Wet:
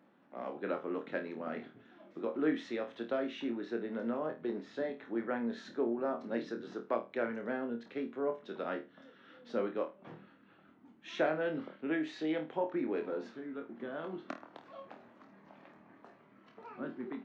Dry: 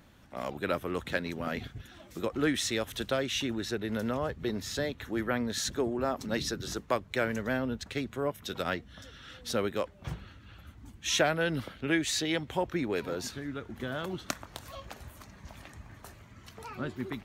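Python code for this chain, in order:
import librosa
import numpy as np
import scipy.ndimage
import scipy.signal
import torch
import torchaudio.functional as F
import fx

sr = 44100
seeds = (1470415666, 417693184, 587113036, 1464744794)

y = scipy.signal.sosfilt(scipy.signal.butter(4, 220.0, 'highpass', fs=sr, output='sos'), x)
y = fx.spacing_loss(y, sr, db_at_10k=45)
y = fx.room_flutter(y, sr, wall_m=4.4, rt60_s=0.26)
y = y * librosa.db_to_amplitude(-2.0)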